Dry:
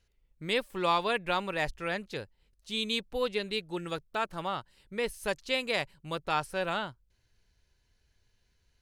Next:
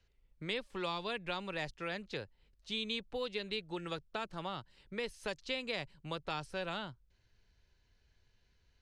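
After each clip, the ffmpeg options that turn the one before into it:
ffmpeg -i in.wav -filter_complex "[0:a]lowpass=5300,acrossover=split=120|390|3400[link_01][link_02][link_03][link_04];[link_01]acompressor=threshold=-53dB:ratio=4[link_05];[link_02]acompressor=threshold=-46dB:ratio=4[link_06];[link_03]acompressor=threshold=-40dB:ratio=4[link_07];[link_04]acompressor=threshold=-42dB:ratio=4[link_08];[link_05][link_06][link_07][link_08]amix=inputs=4:normalize=0" out.wav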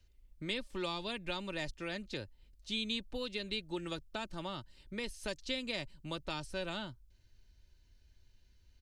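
ffmpeg -i in.wav -af "equalizer=frequency=1100:width=0.31:gain=-9.5,aecho=1:1:3.3:0.39,volume=6dB" out.wav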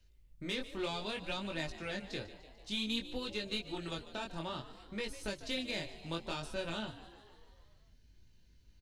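ffmpeg -i in.wav -filter_complex "[0:a]aeval=exprs='(tanh(25.1*val(0)+0.35)-tanh(0.35))/25.1':channel_layout=same,flanger=delay=18.5:depth=6.5:speed=0.59,asplit=8[link_01][link_02][link_03][link_04][link_05][link_06][link_07][link_08];[link_02]adelay=148,afreqshift=65,volume=-15dB[link_09];[link_03]adelay=296,afreqshift=130,volume=-19.2dB[link_10];[link_04]adelay=444,afreqshift=195,volume=-23.3dB[link_11];[link_05]adelay=592,afreqshift=260,volume=-27.5dB[link_12];[link_06]adelay=740,afreqshift=325,volume=-31.6dB[link_13];[link_07]adelay=888,afreqshift=390,volume=-35.8dB[link_14];[link_08]adelay=1036,afreqshift=455,volume=-39.9dB[link_15];[link_01][link_09][link_10][link_11][link_12][link_13][link_14][link_15]amix=inputs=8:normalize=0,volume=4.5dB" out.wav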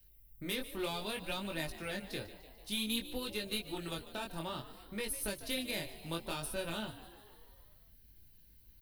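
ffmpeg -i in.wav -af "aexciter=amount=12.4:drive=6.6:freq=10000" out.wav

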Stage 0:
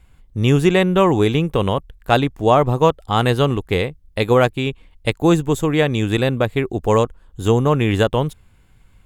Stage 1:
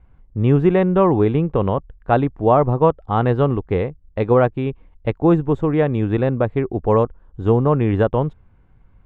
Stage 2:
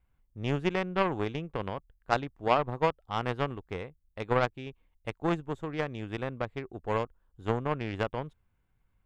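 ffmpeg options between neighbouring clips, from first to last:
ffmpeg -i in.wav -af "lowpass=1300" out.wav
ffmpeg -i in.wav -af "crystalizer=i=7.5:c=0,aeval=exprs='1*(cos(1*acos(clip(val(0)/1,-1,1)))-cos(1*PI/2))+0.251*(cos(3*acos(clip(val(0)/1,-1,1)))-cos(3*PI/2))':channel_layout=same,volume=-8.5dB" out.wav

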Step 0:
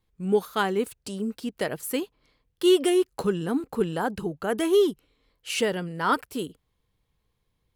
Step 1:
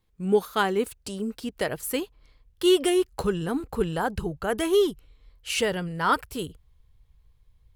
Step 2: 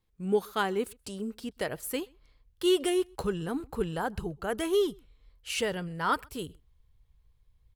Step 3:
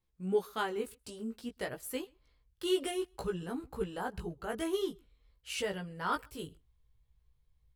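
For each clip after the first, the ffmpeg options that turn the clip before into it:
ffmpeg -i in.wav -af "asubboost=boost=9:cutoff=81,volume=1.5dB" out.wav
ffmpeg -i in.wav -filter_complex "[0:a]asplit=2[link_01][link_02];[link_02]adelay=128.3,volume=-29dB,highshelf=frequency=4000:gain=-2.89[link_03];[link_01][link_03]amix=inputs=2:normalize=0,volume=-5dB" out.wav
ffmpeg -i in.wav -af "flanger=delay=15.5:depth=2.9:speed=0.53,volume=-2.5dB" out.wav

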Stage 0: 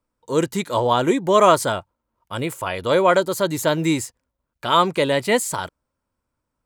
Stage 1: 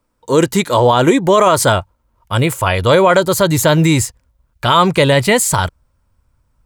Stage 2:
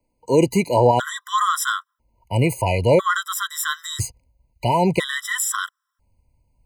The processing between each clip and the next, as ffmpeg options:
ffmpeg -i in.wav -af "asubboost=boost=5.5:cutoff=120,alimiter=level_in=11.5dB:limit=-1dB:release=50:level=0:latency=1,volume=-1dB" out.wav
ffmpeg -i in.wav -filter_complex "[0:a]acrossover=split=180|1600|6200[link_01][link_02][link_03][link_04];[link_03]asoftclip=type=tanh:threshold=-16dB[link_05];[link_01][link_02][link_05][link_04]amix=inputs=4:normalize=0,afftfilt=real='re*gt(sin(2*PI*0.5*pts/sr)*(1-2*mod(floor(b*sr/1024/1000),2)),0)':imag='im*gt(sin(2*PI*0.5*pts/sr)*(1-2*mod(floor(b*sr/1024/1000),2)),0)':win_size=1024:overlap=0.75,volume=-3.5dB" out.wav

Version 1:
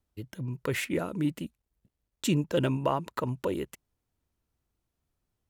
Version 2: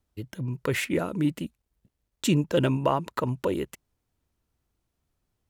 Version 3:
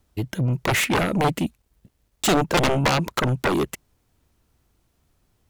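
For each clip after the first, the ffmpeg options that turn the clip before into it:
ffmpeg -i in.wav -af "highshelf=frequency=11000:gain=-2.5,volume=3.5dB" out.wav
ffmpeg -i in.wav -af "aeval=exprs='0.316*(cos(1*acos(clip(val(0)/0.316,-1,1)))-cos(1*PI/2))+0.126*(cos(7*acos(clip(val(0)/0.316,-1,1)))-cos(7*PI/2))':channel_layout=same,volume=19.5dB,asoftclip=hard,volume=-19.5dB,volume=6.5dB" out.wav

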